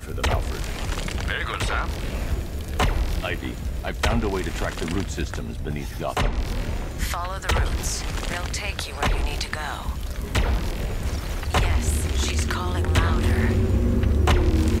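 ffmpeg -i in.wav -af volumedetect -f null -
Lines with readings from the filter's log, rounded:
mean_volume: -23.5 dB
max_volume: -7.7 dB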